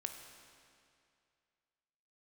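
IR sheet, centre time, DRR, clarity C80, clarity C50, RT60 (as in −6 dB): 46 ms, 4.5 dB, 7.0 dB, 6.0 dB, 2.4 s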